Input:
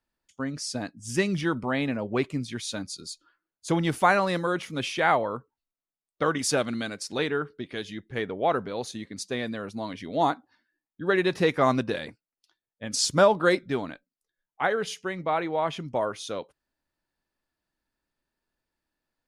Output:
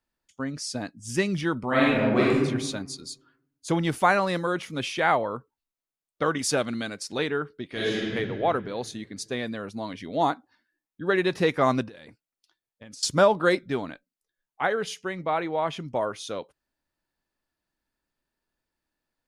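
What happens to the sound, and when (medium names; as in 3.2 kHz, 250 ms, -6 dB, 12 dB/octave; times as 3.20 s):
1.67–2.40 s: reverb throw, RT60 1.1 s, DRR -6.5 dB
7.69–8.14 s: reverb throw, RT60 2.1 s, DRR -9 dB
11.88–13.03 s: compression 16:1, threshold -41 dBFS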